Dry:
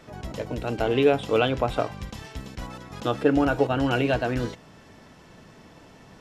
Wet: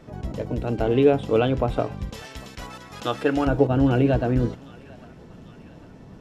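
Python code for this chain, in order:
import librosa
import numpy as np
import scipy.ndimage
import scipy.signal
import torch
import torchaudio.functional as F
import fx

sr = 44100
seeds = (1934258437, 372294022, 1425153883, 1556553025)

y = fx.tilt_shelf(x, sr, db=fx.steps((0.0, 5.5), (2.12, -3.5), (3.46, 8.0)), hz=690.0)
y = fx.echo_thinned(y, sr, ms=800, feedback_pct=64, hz=920.0, wet_db=-19.5)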